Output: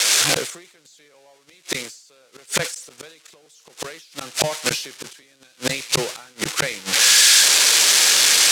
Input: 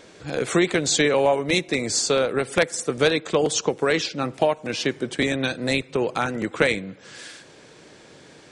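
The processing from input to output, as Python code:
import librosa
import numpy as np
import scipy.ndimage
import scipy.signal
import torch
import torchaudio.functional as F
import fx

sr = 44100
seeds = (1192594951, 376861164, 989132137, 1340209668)

y = x + 0.5 * 10.0 ** (-9.0 / 20.0) * np.diff(np.sign(x), prepend=np.sign(x[:1]))
y = fx.recorder_agc(y, sr, target_db=-5.5, rise_db_per_s=14.0, max_gain_db=30)
y = scipy.signal.sosfilt(scipy.signal.butter(2, 6900.0, 'lowpass', fs=sr, output='sos'), y)
y = fx.low_shelf(y, sr, hz=340.0, db=-11.5)
y = fx.gate_flip(y, sr, shuts_db=-12.0, range_db=-40)
y = fx.peak_eq(y, sr, hz=150.0, db=3.0, octaves=0.21)
y = fx.sustainer(y, sr, db_per_s=93.0)
y = F.gain(torch.from_numpy(y), 6.5).numpy()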